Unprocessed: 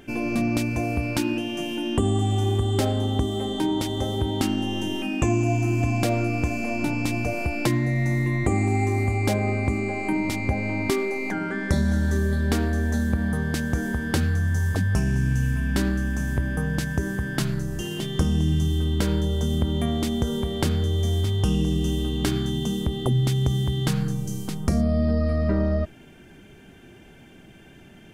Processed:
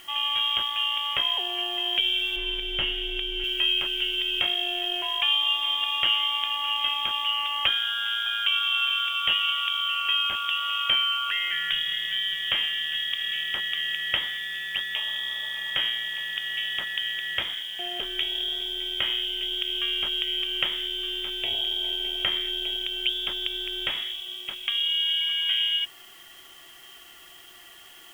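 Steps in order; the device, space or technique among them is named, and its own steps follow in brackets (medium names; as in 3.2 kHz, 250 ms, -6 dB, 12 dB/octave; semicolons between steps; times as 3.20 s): scrambled radio voice (band-pass 340–2600 Hz; frequency inversion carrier 3.5 kHz; white noise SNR 26 dB); 2.36–3.44 s: tilt EQ -2.5 dB/octave; trim +3.5 dB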